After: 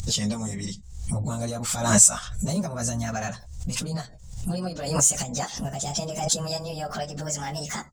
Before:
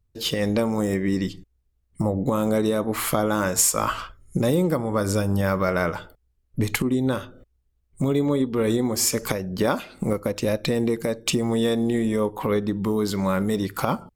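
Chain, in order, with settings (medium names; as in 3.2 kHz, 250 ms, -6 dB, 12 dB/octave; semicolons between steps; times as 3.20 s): pitch bend over the whole clip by +7 st starting unshifted; FFT filter 130 Hz 0 dB, 200 Hz +1 dB, 290 Hz -7 dB, 490 Hz +3 dB, 800 Hz +9 dB, 1.2 kHz +6 dB, 2.4 kHz -7 dB, 4.4 kHz +2 dB, 7.3 kHz +13 dB, 12 kHz -11 dB; upward compressor, threshold -21 dBFS; high-order bell 670 Hz -13.5 dB 2.8 oct; plain phase-vocoder stretch 0.56×; swell ahead of each attack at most 72 dB/s; trim +3 dB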